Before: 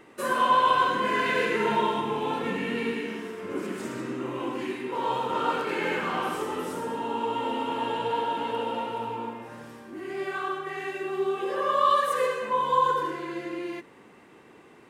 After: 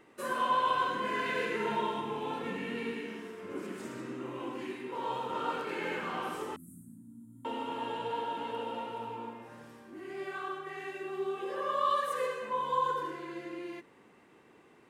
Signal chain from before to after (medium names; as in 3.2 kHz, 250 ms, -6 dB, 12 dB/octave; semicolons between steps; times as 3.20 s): 6.56–7.45 s: inverse Chebyshev band-stop 420–5200 Hz, stop band 40 dB; trim -7.5 dB